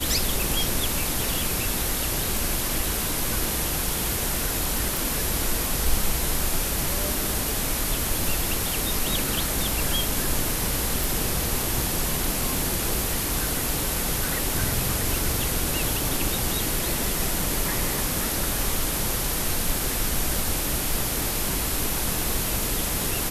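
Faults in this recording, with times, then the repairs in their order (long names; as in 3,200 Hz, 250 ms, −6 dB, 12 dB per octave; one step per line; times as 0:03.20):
0:04.97: click
0:11.04: click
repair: click removal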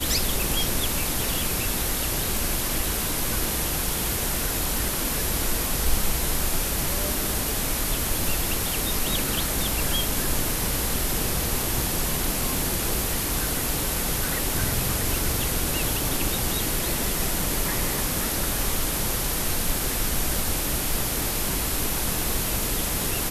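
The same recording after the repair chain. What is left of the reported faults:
none of them is left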